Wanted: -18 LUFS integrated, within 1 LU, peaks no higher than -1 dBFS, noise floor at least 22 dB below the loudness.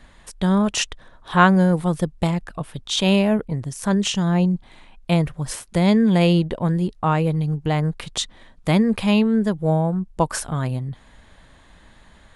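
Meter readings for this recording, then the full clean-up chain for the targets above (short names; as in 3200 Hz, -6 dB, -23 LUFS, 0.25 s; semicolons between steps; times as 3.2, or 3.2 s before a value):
loudness -20.5 LUFS; peak -1.5 dBFS; loudness target -18.0 LUFS
-> gain +2.5 dB; limiter -1 dBFS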